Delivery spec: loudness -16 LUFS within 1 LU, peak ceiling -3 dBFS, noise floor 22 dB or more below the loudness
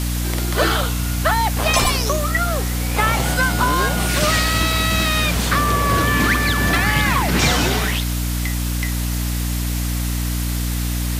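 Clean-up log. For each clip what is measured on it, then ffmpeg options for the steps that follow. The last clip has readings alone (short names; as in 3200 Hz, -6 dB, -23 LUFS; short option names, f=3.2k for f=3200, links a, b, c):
hum 60 Hz; harmonics up to 300 Hz; hum level -19 dBFS; noise floor -22 dBFS; noise floor target -41 dBFS; loudness -18.5 LUFS; peak -3.0 dBFS; loudness target -16.0 LUFS
-> -af "bandreject=f=60:t=h:w=4,bandreject=f=120:t=h:w=4,bandreject=f=180:t=h:w=4,bandreject=f=240:t=h:w=4,bandreject=f=300:t=h:w=4"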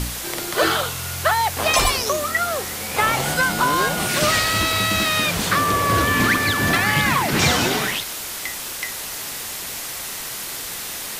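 hum none; noise floor -31 dBFS; noise floor target -42 dBFS
-> -af "afftdn=nr=11:nf=-31"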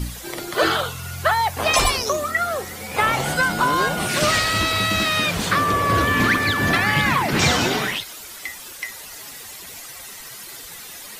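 noise floor -38 dBFS; noise floor target -42 dBFS
-> -af "afftdn=nr=6:nf=-38"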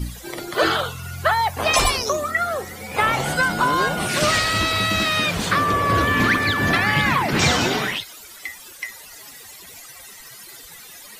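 noise floor -42 dBFS; loudness -19.5 LUFS; peak -4.5 dBFS; loudness target -16.0 LUFS
-> -af "volume=3.5dB,alimiter=limit=-3dB:level=0:latency=1"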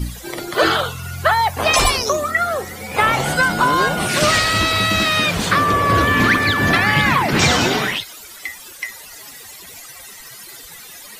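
loudness -16.0 LUFS; peak -3.0 dBFS; noise floor -38 dBFS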